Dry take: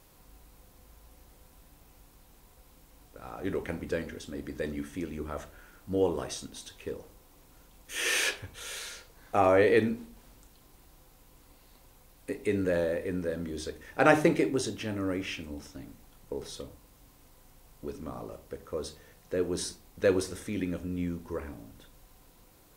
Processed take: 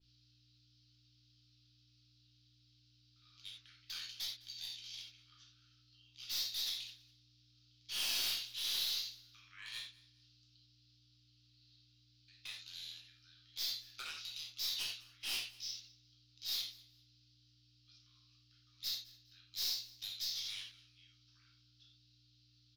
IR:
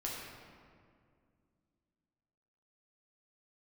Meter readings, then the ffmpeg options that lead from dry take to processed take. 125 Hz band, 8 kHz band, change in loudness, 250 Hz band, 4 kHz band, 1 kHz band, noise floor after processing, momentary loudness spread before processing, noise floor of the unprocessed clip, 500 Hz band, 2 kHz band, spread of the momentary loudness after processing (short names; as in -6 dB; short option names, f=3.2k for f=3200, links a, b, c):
-25.5 dB, -5.5 dB, -9.0 dB, under -35 dB, +3.0 dB, -26.5 dB, -70 dBFS, 20 LU, -59 dBFS, under -40 dB, -15.5 dB, 17 LU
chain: -filter_complex "[0:a]afreqshift=-95,acompressor=threshold=-29dB:ratio=16,aexciter=amount=9.7:drive=8.7:freq=3k,asuperpass=centerf=2600:order=12:qfactor=0.69,afwtdn=0.0126,aeval=exprs='(tanh(35.5*val(0)+0.05)-tanh(0.05))/35.5':c=same,aeval=exprs='val(0)+0.000562*(sin(2*PI*60*n/s)+sin(2*PI*2*60*n/s)/2+sin(2*PI*3*60*n/s)/3+sin(2*PI*4*60*n/s)/4+sin(2*PI*5*60*n/s)/5)':c=same,aecho=1:1:207|414:0.0794|0.0191[a];[1:a]atrim=start_sample=2205,atrim=end_sample=4410[b];[a][b]afir=irnorm=-1:irlink=0,adynamicequalizer=threshold=0.00708:dfrequency=3500:dqfactor=0.7:tfrequency=3500:tqfactor=0.7:attack=5:release=100:ratio=0.375:range=2:mode=boostabove:tftype=highshelf,volume=-6dB"